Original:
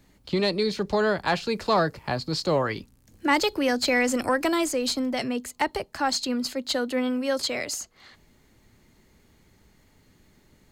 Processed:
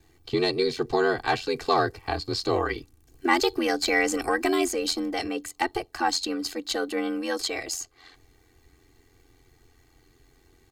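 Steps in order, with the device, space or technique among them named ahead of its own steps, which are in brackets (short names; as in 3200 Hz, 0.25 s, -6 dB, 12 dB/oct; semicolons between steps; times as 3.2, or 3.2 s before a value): ring-modulated robot voice (ring modulator 44 Hz; comb 2.6 ms, depth 89%)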